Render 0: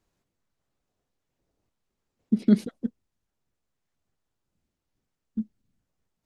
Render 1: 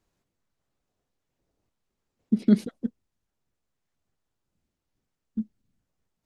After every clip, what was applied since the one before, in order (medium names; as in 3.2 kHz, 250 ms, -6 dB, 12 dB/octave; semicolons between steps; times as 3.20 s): no audible change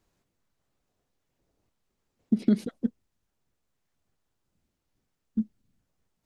compression 5:1, threshold -21 dBFS, peak gain reduction 8.5 dB; trim +2.5 dB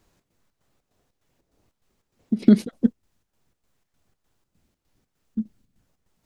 square tremolo 3.3 Hz, depth 60%, duty 65%; trim +8.5 dB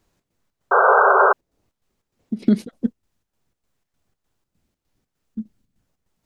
painted sound noise, 0.71–1.33 s, 380–1600 Hz -11 dBFS; trim -2.5 dB